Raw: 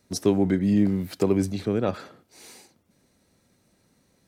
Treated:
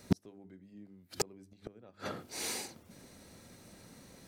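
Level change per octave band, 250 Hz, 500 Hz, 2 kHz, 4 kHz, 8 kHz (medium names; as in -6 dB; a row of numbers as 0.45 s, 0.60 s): -18.0 dB, -17.5 dB, -5.5 dB, -3.0 dB, -0.5 dB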